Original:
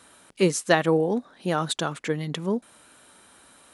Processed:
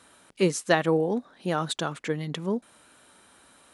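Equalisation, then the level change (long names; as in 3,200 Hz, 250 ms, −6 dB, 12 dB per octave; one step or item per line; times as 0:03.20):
high-shelf EQ 8,800 Hz −4 dB
−2.0 dB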